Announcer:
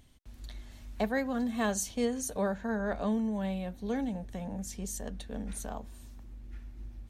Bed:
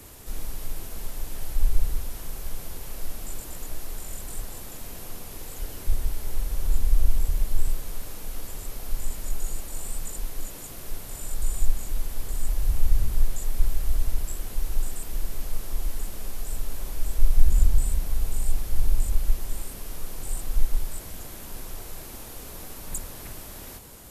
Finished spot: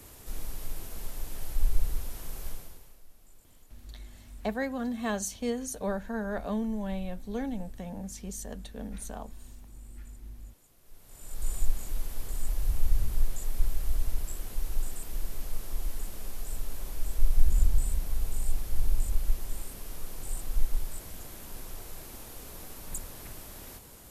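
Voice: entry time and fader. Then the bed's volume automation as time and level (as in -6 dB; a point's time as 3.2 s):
3.45 s, -1.0 dB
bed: 2.49 s -4 dB
3.04 s -23 dB
10.81 s -23 dB
11.48 s -4.5 dB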